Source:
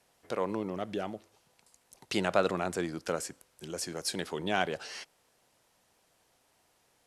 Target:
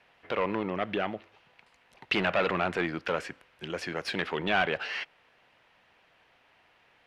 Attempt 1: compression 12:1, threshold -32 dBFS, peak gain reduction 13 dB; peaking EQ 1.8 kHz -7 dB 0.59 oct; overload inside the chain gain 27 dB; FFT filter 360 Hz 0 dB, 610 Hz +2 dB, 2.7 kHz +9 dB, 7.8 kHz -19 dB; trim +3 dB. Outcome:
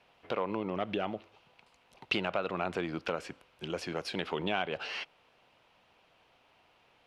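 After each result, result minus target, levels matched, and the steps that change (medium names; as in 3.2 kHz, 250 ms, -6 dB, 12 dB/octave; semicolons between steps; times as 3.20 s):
compression: peak gain reduction +13 dB; 2 kHz band -2.5 dB
remove: compression 12:1, threshold -32 dBFS, peak gain reduction 13 dB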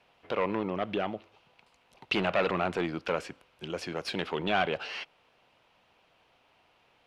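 2 kHz band -3.0 dB
change: peaking EQ 1.8 kHz +2 dB 0.59 oct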